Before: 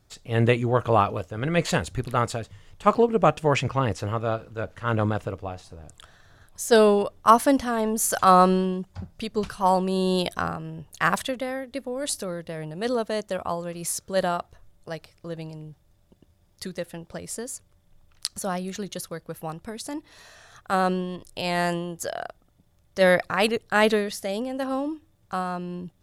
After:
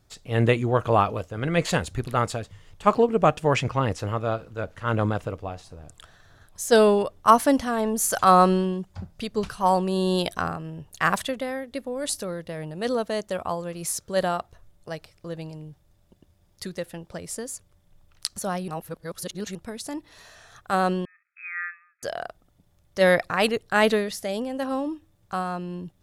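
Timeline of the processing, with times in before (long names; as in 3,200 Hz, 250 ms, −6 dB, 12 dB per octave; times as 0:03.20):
0:18.68–0:19.55: reverse
0:21.05–0:22.03: linear-phase brick-wall band-pass 1,200–2,600 Hz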